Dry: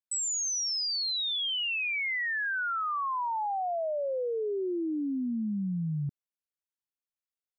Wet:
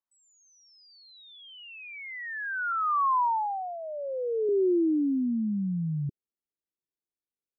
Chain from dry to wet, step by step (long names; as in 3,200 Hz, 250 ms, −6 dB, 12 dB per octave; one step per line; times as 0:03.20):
0:02.72–0:04.49: elliptic band-pass filter 280–1,800 Hz
low-pass filter sweep 1,100 Hz → 380 Hz, 0:03.13–0:03.79